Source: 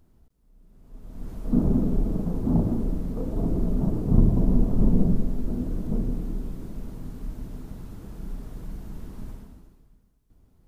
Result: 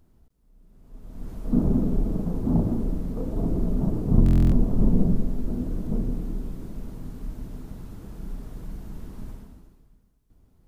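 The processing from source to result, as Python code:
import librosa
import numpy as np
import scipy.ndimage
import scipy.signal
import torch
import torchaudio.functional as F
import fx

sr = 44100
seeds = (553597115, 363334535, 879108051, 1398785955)

y = fx.buffer_glitch(x, sr, at_s=(4.24,), block=1024, repeats=11)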